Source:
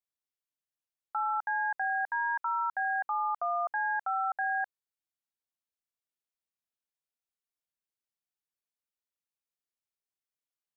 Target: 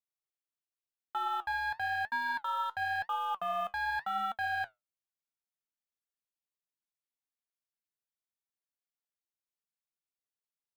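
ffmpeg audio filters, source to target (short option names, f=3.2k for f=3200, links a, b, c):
-af "acrusher=bits=9:mode=log:mix=0:aa=0.000001,aeval=exprs='0.0631*(cos(1*acos(clip(val(0)/0.0631,-1,1)))-cos(1*PI/2))+0.00891*(cos(3*acos(clip(val(0)/0.0631,-1,1)))-cos(3*PI/2))+0.000355*(cos(6*acos(clip(val(0)/0.0631,-1,1)))-cos(6*PI/2))':c=same,flanger=delay=4.3:depth=5.7:regen=69:speed=0.93:shape=sinusoidal,volume=2.5dB"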